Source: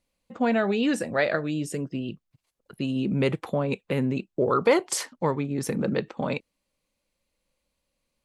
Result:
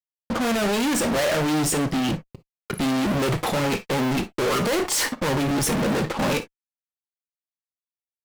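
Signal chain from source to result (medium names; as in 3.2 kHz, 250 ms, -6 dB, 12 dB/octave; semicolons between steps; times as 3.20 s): fuzz box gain 49 dB, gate -55 dBFS; gated-style reverb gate 80 ms flat, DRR 10 dB; trim -8.5 dB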